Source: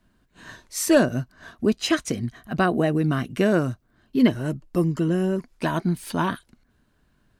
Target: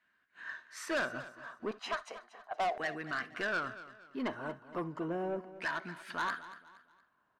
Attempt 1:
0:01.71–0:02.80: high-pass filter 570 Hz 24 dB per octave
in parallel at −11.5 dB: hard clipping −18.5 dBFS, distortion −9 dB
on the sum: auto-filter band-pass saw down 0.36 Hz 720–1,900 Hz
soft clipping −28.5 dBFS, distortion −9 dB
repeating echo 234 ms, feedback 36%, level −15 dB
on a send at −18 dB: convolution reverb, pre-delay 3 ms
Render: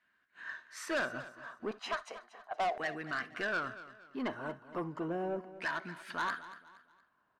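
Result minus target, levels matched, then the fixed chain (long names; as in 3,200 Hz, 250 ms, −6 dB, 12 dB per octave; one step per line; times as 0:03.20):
hard clipping: distortion +13 dB
0:01.71–0:02.80: high-pass filter 570 Hz 24 dB per octave
in parallel at −11.5 dB: hard clipping −11 dBFS, distortion −22 dB
on the sum: auto-filter band-pass saw down 0.36 Hz 720–1,900 Hz
soft clipping −28.5 dBFS, distortion −9 dB
repeating echo 234 ms, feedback 36%, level −15 dB
on a send at −18 dB: convolution reverb, pre-delay 3 ms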